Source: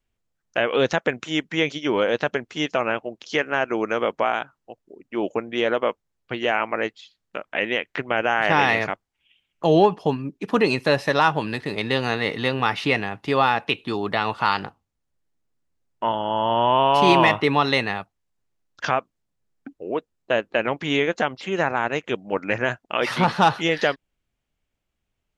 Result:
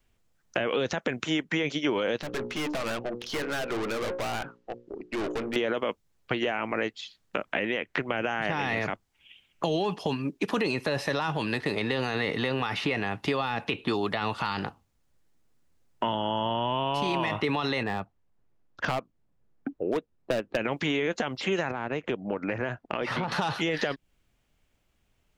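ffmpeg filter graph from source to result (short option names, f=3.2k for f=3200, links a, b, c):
-filter_complex "[0:a]asettb=1/sr,asplit=3[a][b][c];[a]atrim=end=2.214[d];[b]atrim=start=2.21:end=5.56,asetpts=PTS-STARTPTS,afade=t=in:d=0.004:c=qsin,afade=t=out:st=3.346:d=0.004:c=qsin,lowpass=4.8k,bandreject=f=60:t=h:w=6,bandreject=f=120:t=h:w=6,bandreject=f=180:t=h:w=6,bandreject=f=240:t=h:w=6,bandreject=f=300:t=h:w=6,bandreject=f=360:t=h:w=6,bandreject=f=420:t=h:w=6,bandreject=f=480:t=h:w=6,bandreject=f=540:t=h:w=6,aeval=exprs='(tanh(56.2*val(0)+0.25)-tanh(0.25))/56.2':c=same[e];[c]atrim=start=5.556[f];[d][e]acrossfade=d=0.004:c1=hsin:c2=qsin[g];[g][f]acrossfade=d=0.004:c1=qsin:c2=hsin,asettb=1/sr,asplit=3[h][i][j];[h]atrim=end=17.834[k];[i]atrim=start=17.83:end=20.57,asetpts=PTS-STARTPTS,afade=t=in:d=0.004:c=qsin,afade=t=out:st=2.736:d=0.004:c=qsin,lowpass=f=1k:p=1,volume=20dB,asoftclip=hard,volume=-20dB[l];[j]atrim=start=20.566[m];[k][l]acrossfade=d=0.004:c1=hsin:c2=qsin[n];[n][m]acrossfade=d=0.004:c1=qsin:c2=hsin,asettb=1/sr,asplit=3[o][p][q];[o]atrim=end=21.714[r];[p]atrim=start=21.71:end=23.32,asetpts=PTS-STARTPTS,afade=t=in:d=0.004:c=qsin,afade=t=out:st=1.606:d=0.004:c=qsin,lowpass=f=1.2k:p=1,acompressor=threshold=-31dB:ratio=3:attack=3.2:release=140:knee=1:detection=peak[s];[q]atrim=start=23.316[t];[r][s]acrossfade=d=0.004:c1=hsin:c2=qsin[u];[u][t]acrossfade=d=0.004:c1=qsin:c2=hsin,alimiter=limit=-14.5dB:level=0:latency=1:release=19,acrossover=split=310|2300[v][w][x];[v]acompressor=threshold=-42dB:ratio=4[y];[w]acompressor=threshold=-38dB:ratio=4[z];[x]acompressor=threshold=-45dB:ratio=4[aa];[y][z][aa]amix=inputs=3:normalize=0,volume=8dB"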